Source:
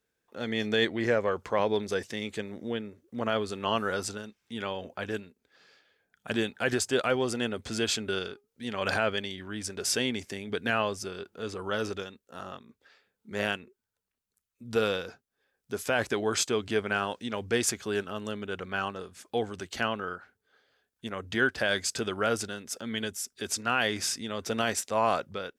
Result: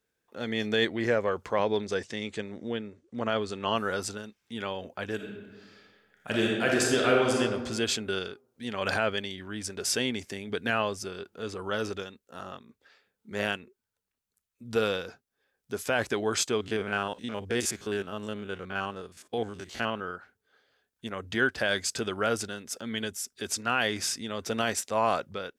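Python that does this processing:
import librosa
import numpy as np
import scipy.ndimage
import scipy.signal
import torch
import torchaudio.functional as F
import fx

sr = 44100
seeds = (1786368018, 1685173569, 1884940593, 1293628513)

y = fx.lowpass(x, sr, hz=8700.0, slope=24, at=(1.55, 3.75))
y = fx.reverb_throw(y, sr, start_s=5.15, length_s=2.25, rt60_s=1.4, drr_db=-2.0)
y = fx.spec_steps(y, sr, hold_ms=50, at=(16.57, 20.15), fade=0.02)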